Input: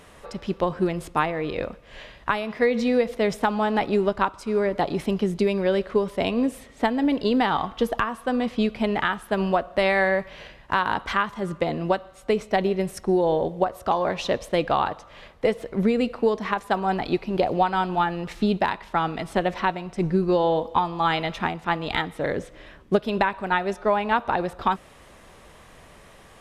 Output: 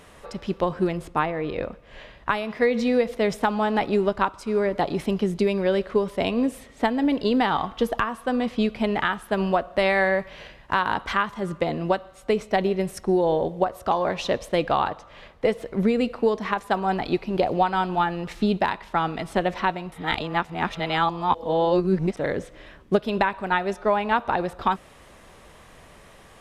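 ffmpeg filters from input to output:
ffmpeg -i in.wav -filter_complex "[0:a]asettb=1/sr,asplit=3[link_01][link_02][link_03];[link_01]atrim=end=0.974[link_04];[link_02]atrim=start=0.97:end=2.29,asetpts=PTS-STARTPTS,afade=type=in:duration=0.004:curve=qsin,afade=type=out:start_time=1.316:duration=0.004:curve=qsin,highshelf=frequency=3000:gain=-6.5[link_05];[link_03]atrim=start=2.286[link_06];[link_04][link_05]acrossfade=duration=0.004:curve1=hsin:curve2=qsin[link_07];[link_07][link_06]acrossfade=duration=0.004:curve1=qsin:curve2=hsin,asettb=1/sr,asplit=3[link_08][link_09][link_10];[link_08]atrim=end=14.904[link_11];[link_09]atrim=start=14.9:end=15.49,asetpts=PTS-STARTPTS,afade=type=in:duration=0.004:curve=qsin,afade=type=out:start_time=0.586:duration=0.004:curve=qsin,highshelf=frequency=6900:gain=-5.5[link_12];[link_10]atrim=start=15.486[link_13];[link_11][link_12]acrossfade=duration=0.004:curve1=hsin:curve2=qsin[link_14];[link_14][link_13]acrossfade=duration=0.004:curve1=qsin:curve2=hsin,asplit=3[link_15][link_16][link_17];[link_15]atrim=end=19.922[link_18];[link_16]atrim=start=19.918:end=22.172,asetpts=PTS-STARTPTS,areverse[link_19];[link_17]atrim=start=22.168[link_20];[link_18][link_19]acrossfade=duration=0.004:curve1=hsin:curve2=hsin[link_21];[link_21][link_20]acrossfade=duration=0.004:curve1=hsin:curve2=hsin" out.wav

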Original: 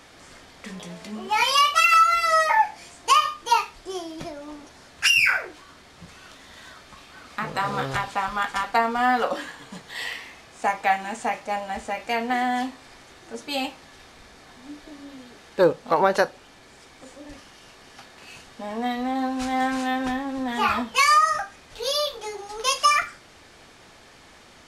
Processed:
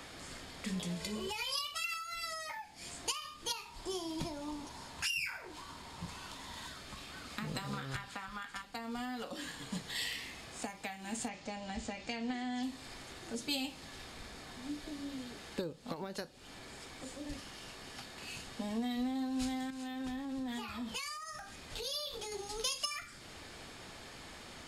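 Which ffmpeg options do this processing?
ffmpeg -i in.wav -filter_complex "[0:a]asettb=1/sr,asplit=3[link_01][link_02][link_03];[link_01]atrim=end=1.004[link_04];[link_02]atrim=start=1:end=1.67,asetpts=PTS-STARTPTS,afade=type=in:duration=0.004:curve=qsin,afade=type=out:start_time=0.666:duration=0.004:curve=qsin,aecho=1:1:2:0.85,atrim=end_sample=29547[link_05];[link_03]atrim=start=1.666[link_06];[link_04][link_05]acrossfade=duration=0.004:curve1=hsin:curve2=qsin[link_07];[link_07][link_06]acrossfade=duration=0.004:curve1=qsin:curve2=hsin,asettb=1/sr,asplit=3[link_08][link_09][link_10];[link_08]atrim=end=3.654[link_11];[link_09]atrim=start=3.65:end=6.67,asetpts=PTS-STARTPTS,afade=type=in:duration=0.004:curve=qsin,afade=type=out:start_time=3.016:duration=0.004:curve=qsin,equalizer=frequency=950:width_type=o:width=0.39:gain=13.5[link_12];[link_10]atrim=start=6.666[link_13];[link_11][link_12]acrossfade=duration=0.004:curve1=hsin:curve2=qsin[link_14];[link_14][link_13]acrossfade=duration=0.004:curve1=qsin:curve2=hsin,asettb=1/sr,asplit=3[link_15][link_16][link_17];[link_15]atrim=end=7.734[link_18];[link_16]atrim=start=7.73:end=8.62,asetpts=PTS-STARTPTS,afade=type=in:duration=0.004:curve=qsin,afade=type=out:start_time=0.886:duration=0.004:curve=qsin,equalizer=frequency=1500:width=1:gain=11.5[link_19];[link_17]atrim=start=8.616[link_20];[link_18][link_19]acrossfade=duration=0.004:curve1=hsin:curve2=qsin[link_21];[link_21][link_20]acrossfade=duration=0.004:curve1=qsin:curve2=hsin,asettb=1/sr,asplit=3[link_22][link_23][link_24];[link_22]atrim=end=11.284[link_25];[link_23]atrim=start=11.28:end=12.63,asetpts=PTS-STARTPTS,afade=type=in:duration=0.004:curve=qsin,afade=type=out:start_time=1.346:duration=0.004:curve=qsin,lowpass=frequency=7100:width=0.5412,lowpass=frequency=7100:width=1.3066[link_26];[link_24]atrim=start=12.626[link_27];[link_25][link_26]acrossfade=duration=0.004:curve1=hsin:curve2=qsin[link_28];[link_28][link_27]acrossfade=duration=0.004:curve1=qsin:curve2=hsin,asettb=1/sr,asplit=3[link_29][link_30][link_31];[link_29]atrim=end=19.704[link_32];[link_30]atrim=start=19.7:end=22.32,asetpts=PTS-STARTPTS,afade=type=in:duration=0.004:curve=qsin,afade=type=out:start_time=2.616:duration=0.004:curve=qsin,acompressor=threshold=-34dB:ratio=6:attack=3.2:release=140:knee=1:detection=peak[link_33];[link_31]atrim=start=22.316[link_34];[link_32][link_33]acrossfade=duration=0.004:curve1=hsin:curve2=qsin[link_35];[link_35][link_34]acrossfade=duration=0.004:curve1=qsin:curve2=hsin,acompressor=threshold=-29dB:ratio=10,bandreject=frequency=5900:width=11,acrossover=split=310|3000[link_36][link_37][link_38];[link_37]acompressor=threshold=-54dB:ratio=2.5[link_39];[link_36][link_39][link_38]amix=inputs=3:normalize=0,volume=1.5dB" out.wav

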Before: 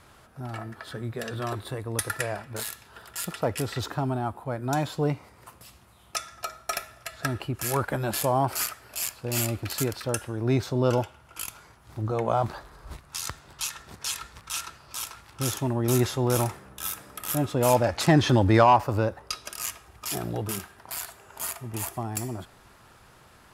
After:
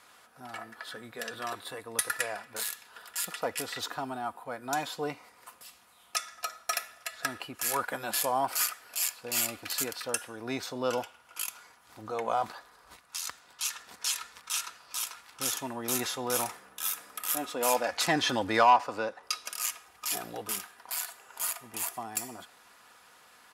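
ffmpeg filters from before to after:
ffmpeg -i in.wav -filter_complex "[0:a]asettb=1/sr,asplit=3[link_01][link_02][link_03];[link_01]atrim=end=17.274[link_04];[link_02]atrim=start=17.27:end=17.93,asetpts=PTS-STARTPTS,afade=type=in:duration=0.004:curve=qsin,afade=type=out:start_time=0.656:duration=0.004:curve=qsin,equalizer=frequency=120:width=1.9:gain=-13.5[link_05];[link_03]atrim=start=17.926[link_06];[link_04][link_05]acrossfade=duration=0.004:curve1=hsin:curve2=qsin[link_07];[link_07][link_06]acrossfade=duration=0.004:curve1=qsin:curve2=hsin,asettb=1/sr,asplit=3[link_08][link_09][link_10];[link_08]atrim=end=18.704[link_11];[link_09]atrim=start=18.7:end=19.23,asetpts=PTS-STARTPTS,afade=type=in:duration=0.004:curve=qsin,afade=type=out:start_time=0.526:duration=0.004:curve=qsin,highpass=140,lowpass=7600[link_12];[link_10]atrim=start=19.226[link_13];[link_11][link_12]acrossfade=duration=0.004:curve1=hsin:curve2=qsin[link_14];[link_14][link_13]acrossfade=duration=0.004:curve1=qsin:curve2=hsin,asplit=3[link_15][link_16][link_17];[link_15]atrim=end=12.522[link_18];[link_16]atrim=start=12.518:end=13.652,asetpts=PTS-STARTPTS,volume=-3dB[link_19];[link_17]atrim=start=13.648[link_20];[link_18][link_19]acrossfade=duration=0.004:curve1=hsin:curve2=hsin[link_21];[link_21][link_20]acrossfade=duration=0.004:curve1=hsin:curve2=hsin,highpass=frequency=1000:poles=1,aecho=1:1:4.1:0.38" out.wav

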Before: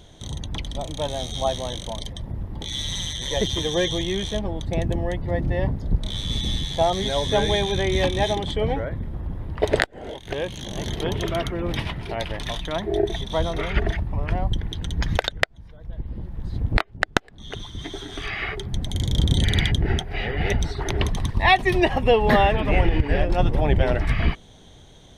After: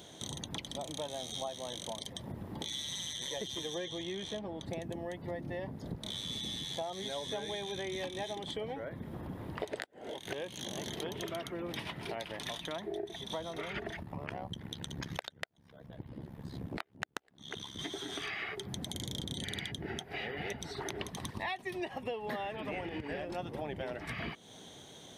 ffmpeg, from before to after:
ffmpeg -i in.wav -filter_complex "[0:a]asettb=1/sr,asplit=3[link_01][link_02][link_03];[link_01]atrim=end=3.784[link_04];[link_02]atrim=start=3.78:end=4.68,asetpts=PTS-STARTPTS,afade=type=in:duration=0.004:curve=qsin,afade=type=out:start_time=0.896:duration=0.004:curve=qsin,highshelf=frequency=7000:gain=-11[link_05];[link_03]atrim=start=4.676[link_06];[link_04][link_05]acrossfade=duration=0.004:curve1=hsin:curve2=qsin[link_07];[link_07][link_06]acrossfade=duration=0.004:curve1=qsin:curve2=hsin,asettb=1/sr,asplit=3[link_08][link_09][link_10];[link_08]atrim=end=14.034[link_11];[link_09]atrim=start=14.03:end=17.79,asetpts=PTS-STARTPTS,afade=type=in:duration=0.004:curve=qsin,afade=type=out:start_time=3.756:duration=0.004:curve=qsin,tremolo=f=69:d=0.889[link_12];[link_10]atrim=start=17.786[link_13];[link_11][link_12]acrossfade=duration=0.004:curve1=hsin:curve2=qsin[link_14];[link_14][link_13]acrossfade=duration=0.004:curve1=qsin:curve2=hsin,highpass=180,highshelf=frequency=8300:gain=8.5,acompressor=threshold=-36dB:ratio=6,volume=-1dB" out.wav

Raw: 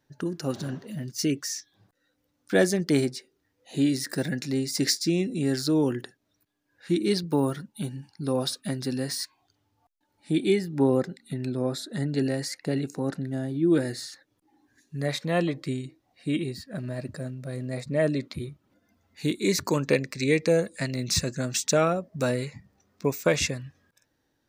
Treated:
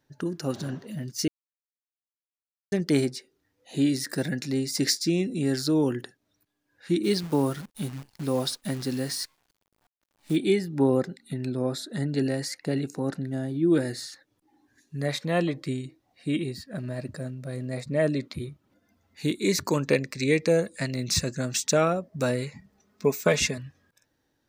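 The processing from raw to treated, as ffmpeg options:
ffmpeg -i in.wav -filter_complex "[0:a]asplit=3[link_01][link_02][link_03];[link_01]afade=type=out:start_time=7.03:duration=0.02[link_04];[link_02]acrusher=bits=8:dc=4:mix=0:aa=0.000001,afade=type=in:start_time=7.03:duration=0.02,afade=type=out:start_time=10.35:duration=0.02[link_05];[link_03]afade=type=in:start_time=10.35:duration=0.02[link_06];[link_04][link_05][link_06]amix=inputs=3:normalize=0,asettb=1/sr,asplit=3[link_07][link_08][link_09];[link_07]atrim=end=22.554[link_10];[link_08]atrim=start=22.55:end=23.58,asetpts=PTS-STARTPTS,afade=type=in:duration=0.004:curve=qsin,afade=type=out:start_time=1.026:duration=0.004:curve=qsin,aecho=1:1:4.7:0.65,atrim=end_sample=45423[link_11];[link_09]atrim=start=23.576[link_12];[link_10][link_11]acrossfade=duration=0.004:curve1=hsin:curve2=qsin[link_13];[link_13][link_12]acrossfade=duration=0.004:curve1=qsin:curve2=hsin,asplit=3[link_14][link_15][link_16];[link_14]atrim=end=1.28,asetpts=PTS-STARTPTS,afade=type=out:start_time=1.276:duration=0.004:curve=hsin[link_17];[link_15]atrim=start=1.28:end=2.72,asetpts=PTS-STARTPTS,volume=0[link_18];[link_16]atrim=start=2.72,asetpts=PTS-STARTPTS,afade=type=in:duration=0.004:curve=hsin[link_19];[link_17][link_18][link_19]concat=n=3:v=0:a=1" out.wav

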